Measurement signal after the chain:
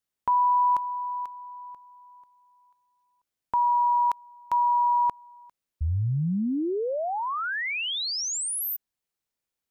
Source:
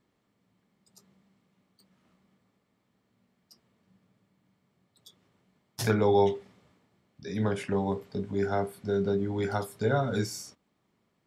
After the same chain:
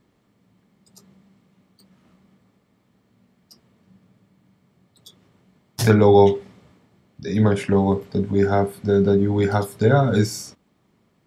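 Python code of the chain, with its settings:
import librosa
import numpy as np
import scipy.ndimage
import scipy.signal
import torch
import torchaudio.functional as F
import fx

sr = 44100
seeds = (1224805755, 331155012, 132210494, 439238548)

y = fx.low_shelf(x, sr, hz=390.0, db=5.0)
y = y * librosa.db_to_amplitude(7.5)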